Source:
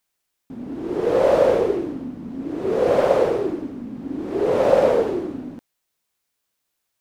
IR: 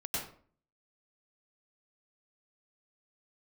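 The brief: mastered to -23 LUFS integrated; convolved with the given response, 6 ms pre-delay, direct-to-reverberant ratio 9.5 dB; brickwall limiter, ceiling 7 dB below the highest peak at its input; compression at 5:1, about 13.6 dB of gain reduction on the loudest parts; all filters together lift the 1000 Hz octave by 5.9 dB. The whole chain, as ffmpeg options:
-filter_complex "[0:a]equalizer=f=1k:t=o:g=8,acompressor=threshold=-25dB:ratio=5,alimiter=limit=-21.5dB:level=0:latency=1,asplit=2[a][b];[1:a]atrim=start_sample=2205,adelay=6[c];[b][c]afir=irnorm=-1:irlink=0,volume=-13dB[d];[a][d]amix=inputs=2:normalize=0,volume=7.5dB"

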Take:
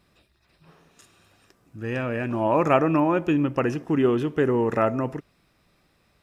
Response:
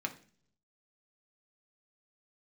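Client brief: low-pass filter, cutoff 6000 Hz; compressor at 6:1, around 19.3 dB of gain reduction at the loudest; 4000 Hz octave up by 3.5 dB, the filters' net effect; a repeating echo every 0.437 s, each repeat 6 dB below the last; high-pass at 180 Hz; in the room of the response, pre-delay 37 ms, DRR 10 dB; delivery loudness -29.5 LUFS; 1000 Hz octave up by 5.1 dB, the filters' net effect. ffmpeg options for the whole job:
-filter_complex "[0:a]highpass=180,lowpass=6k,equalizer=f=1k:t=o:g=6,equalizer=f=4k:t=o:g=5.5,acompressor=threshold=-32dB:ratio=6,aecho=1:1:437|874|1311|1748|2185|2622:0.501|0.251|0.125|0.0626|0.0313|0.0157,asplit=2[a][b];[1:a]atrim=start_sample=2205,adelay=37[c];[b][c]afir=irnorm=-1:irlink=0,volume=-12.5dB[d];[a][d]amix=inputs=2:normalize=0,volume=5dB"

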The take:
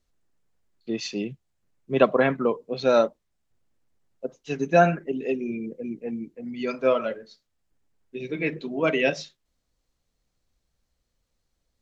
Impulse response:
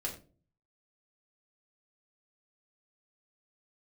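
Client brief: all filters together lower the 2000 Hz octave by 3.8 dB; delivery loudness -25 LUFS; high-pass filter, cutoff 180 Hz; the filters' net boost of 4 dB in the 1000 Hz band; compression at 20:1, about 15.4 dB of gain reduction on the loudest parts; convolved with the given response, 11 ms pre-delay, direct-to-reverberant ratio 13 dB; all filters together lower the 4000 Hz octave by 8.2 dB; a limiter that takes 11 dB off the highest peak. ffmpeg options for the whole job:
-filter_complex "[0:a]highpass=180,equalizer=f=1k:t=o:g=9,equalizer=f=2k:t=o:g=-6.5,equalizer=f=4k:t=o:g=-9,acompressor=threshold=-24dB:ratio=20,alimiter=level_in=1dB:limit=-24dB:level=0:latency=1,volume=-1dB,asplit=2[a][b];[1:a]atrim=start_sample=2205,adelay=11[c];[b][c]afir=irnorm=-1:irlink=0,volume=-14.5dB[d];[a][d]amix=inputs=2:normalize=0,volume=10.5dB"

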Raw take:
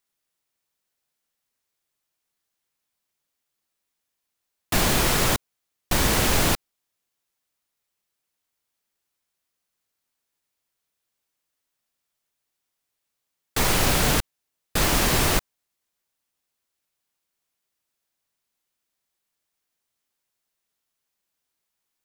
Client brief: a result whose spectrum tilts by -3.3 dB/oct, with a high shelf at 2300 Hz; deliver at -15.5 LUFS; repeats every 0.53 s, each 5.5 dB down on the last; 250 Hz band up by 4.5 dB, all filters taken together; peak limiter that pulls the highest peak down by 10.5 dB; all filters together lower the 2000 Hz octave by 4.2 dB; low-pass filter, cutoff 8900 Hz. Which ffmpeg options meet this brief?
-af "lowpass=8.9k,equalizer=f=250:t=o:g=6,equalizer=f=2k:t=o:g=-8,highshelf=f=2.3k:g=4.5,alimiter=limit=-17.5dB:level=0:latency=1,aecho=1:1:530|1060|1590|2120|2650|3180|3710:0.531|0.281|0.149|0.079|0.0419|0.0222|0.0118,volume=14dB"

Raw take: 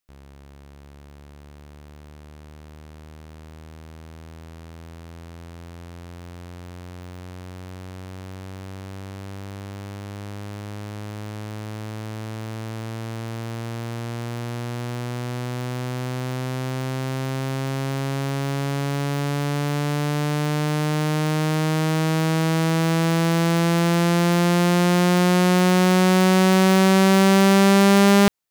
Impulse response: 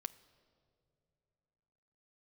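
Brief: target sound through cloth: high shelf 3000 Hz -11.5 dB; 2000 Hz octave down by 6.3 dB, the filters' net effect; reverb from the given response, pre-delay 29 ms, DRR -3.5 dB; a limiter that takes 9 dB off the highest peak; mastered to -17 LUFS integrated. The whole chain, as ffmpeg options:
-filter_complex "[0:a]equalizer=f=2k:t=o:g=-4,alimiter=limit=-18dB:level=0:latency=1,asplit=2[a][b];[1:a]atrim=start_sample=2205,adelay=29[c];[b][c]afir=irnorm=-1:irlink=0,volume=6.5dB[d];[a][d]amix=inputs=2:normalize=0,highshelf=f=3k:g=-11.5,volume=5dB"

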